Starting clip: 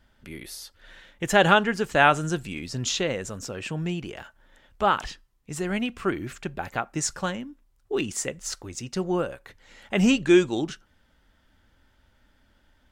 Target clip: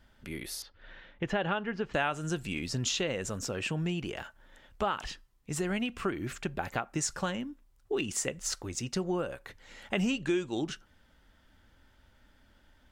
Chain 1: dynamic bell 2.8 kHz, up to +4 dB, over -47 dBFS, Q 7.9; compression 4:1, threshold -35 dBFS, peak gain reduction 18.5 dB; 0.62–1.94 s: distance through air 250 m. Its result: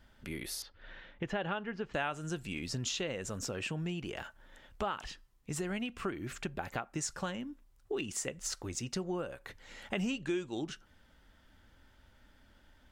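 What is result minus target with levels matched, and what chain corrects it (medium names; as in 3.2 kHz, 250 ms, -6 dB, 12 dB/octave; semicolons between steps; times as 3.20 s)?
compression: peak gain reduction +5 dB
dynamic bell 2.8 kHz, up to +4 dB, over -47 dBFS, Q 7.9; compression 4:1, threshold -28.5 dBFS, peak gain reduction 14 dB; 0.62–1.94 s: distance through air 250 m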